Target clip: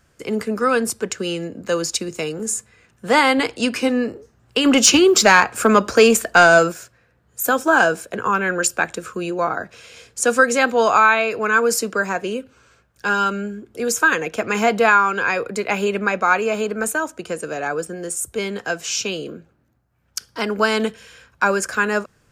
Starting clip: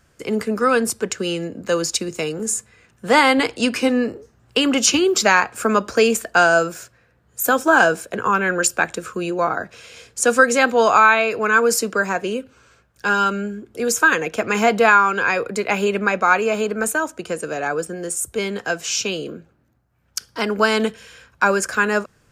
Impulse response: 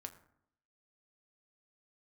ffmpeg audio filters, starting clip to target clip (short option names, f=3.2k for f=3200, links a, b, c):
-filter_complex "[0:a]asplit=3[a][b][c];[a]afade=t=out:st=4.64:d=0.02[d];[b]acontrast=45,afade=t=in:st=4.64:d=0.02,afade=t=out:st=6.71:d=0.02[e];[c]afade=t=in:st=6.71:d=0.02[f];[d][e][f]amix=inputs=3:normalize=0,volume=-1dB"